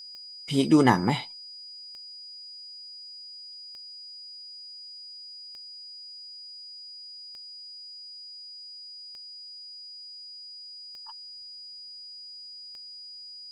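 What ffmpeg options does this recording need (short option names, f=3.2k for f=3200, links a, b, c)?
-af "adeclick=t=4,bandreject=f=4.9k:w=30,afftdn=nr=30:nf=-44"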